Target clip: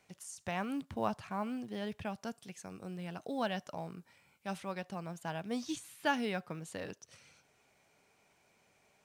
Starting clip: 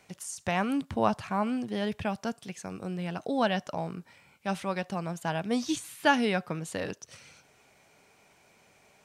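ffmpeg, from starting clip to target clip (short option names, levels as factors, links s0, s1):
-filter_complex "[0:a]asettb=1/sr,asplit=3[s0][s1][s2];[s0]atrim=end=2.234[s3];[s1]atrim=start=2.23:end=4.58,asetpts=PTS-STARTPTS,afade=t=in:d=0.004:c=qsin,afade=t=out:st=2.346:d=0.004:c=qsin,highshelf=f=8200:g=6[s4];[s2]atrim=start=4.576[s5];[s3][s4]acrossfade=d=0.004:c1=hsin:c2=qsin[s6];[s6][s5]acrossfade=d=0.004:c1=qsin:c2=hsin,acrusher=bits=9:mode=log:mix=0:aa=0.000001,volume=0.376"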